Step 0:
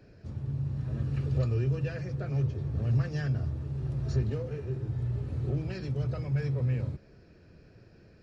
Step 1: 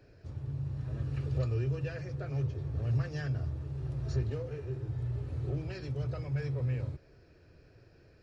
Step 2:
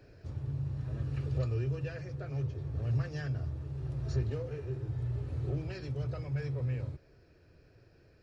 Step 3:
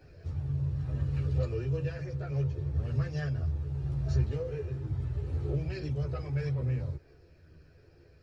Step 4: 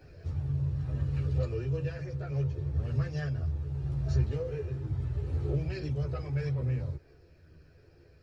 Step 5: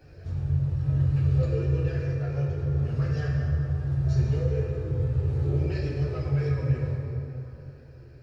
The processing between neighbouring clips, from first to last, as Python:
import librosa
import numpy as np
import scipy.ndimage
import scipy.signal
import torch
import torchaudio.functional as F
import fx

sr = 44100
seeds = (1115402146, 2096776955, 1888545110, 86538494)

y1 = fx.peak_eq(x, sr, hz=200.0, db=-11.5, octaves=0.5)
y1 = F.gain(torch.from_numpy(y1), -2.0).numpy()
y2 = fx.rider(y1, sr, range_db=4, speed_s=2.0)
y2 = F.gain(torch.from_numpy(y2), -1.0).numpy()
y3 = fx.chorus_voices(y2, sr, voices=4, hz=0.58, base_ms=13, depth_ms=1.3, mix_pct=50)
y3 = F.gain(torch.from_numpy(y3), 4.5).numpy()
y4 = fx.rider(y3, sr, range_db=3, speed_s=2.0)
y5 = fx.rev_plate(y4, sr, seeds[0], rt60_s=3.3, hf_ratio=0.5, predelay_ms=0, drr_db=-2.5)